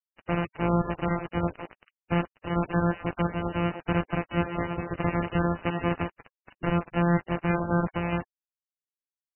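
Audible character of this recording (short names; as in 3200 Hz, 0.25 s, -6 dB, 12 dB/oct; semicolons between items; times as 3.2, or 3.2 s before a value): a buzz of ramps at a fixed pitch in blocks of 256 samples; tremolo saw down 1.6 Hz, depth 35%; a quantiser's noise floor 6-bit, dither none; MP3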